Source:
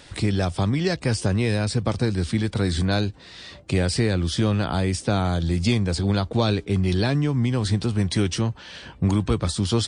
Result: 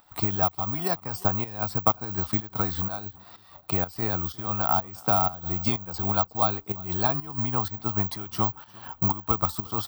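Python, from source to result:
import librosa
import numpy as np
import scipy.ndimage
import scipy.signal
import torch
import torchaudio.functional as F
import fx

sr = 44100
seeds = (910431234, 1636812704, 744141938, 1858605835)

p1 = fx.band_shelf(x, sr, hz=960.0, db=15.0, octaves=1.2)
p2 = fx.rider(p1, sr, range_db=3, speed_s=0.5)
p3 = p1 + F.gain(torch.from_numpy(p2), 1.0).numpy()
p4 = fx.transient(p3, sr, attack_db=4, sustain_db=-3)
p5 = fx.volume_shaper(p4, sr, bpm=125, per_beat=1, depth_db=-13, release_ms=178.0, shape='slow start')
p6 = p5 + fx.echo_feedback(p5, sr, ms=353, feedback_pct=27, wet_db=-23, dry=0)
p7 = (np.kron(p6[::2], np.eye(2)[0]) * 2)[:len(p6)]
y = F.gain(torch.from_numpy(p7), -16.5).numpy()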